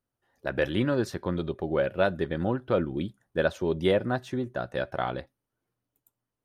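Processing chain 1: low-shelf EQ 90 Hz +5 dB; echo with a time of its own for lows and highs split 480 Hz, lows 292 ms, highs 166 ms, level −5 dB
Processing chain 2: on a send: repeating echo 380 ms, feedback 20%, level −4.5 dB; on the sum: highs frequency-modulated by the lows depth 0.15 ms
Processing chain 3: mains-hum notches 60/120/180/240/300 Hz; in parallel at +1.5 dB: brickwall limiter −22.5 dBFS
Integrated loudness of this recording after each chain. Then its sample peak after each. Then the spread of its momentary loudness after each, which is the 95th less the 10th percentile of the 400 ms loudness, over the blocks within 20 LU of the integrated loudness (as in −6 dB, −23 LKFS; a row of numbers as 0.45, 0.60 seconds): −27.0, −28.0, −25.0 LKFS; −10.5, −11.0, −9.0 dBFS; 11, 9, 7 LU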